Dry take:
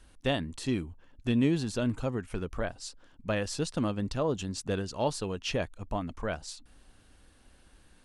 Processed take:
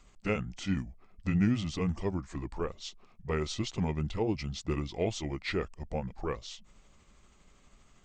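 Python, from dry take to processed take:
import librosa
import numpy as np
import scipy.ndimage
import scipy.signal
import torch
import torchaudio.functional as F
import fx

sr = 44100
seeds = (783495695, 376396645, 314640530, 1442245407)

y = fx.pitch_heads(x, sr, semitones=-5.0)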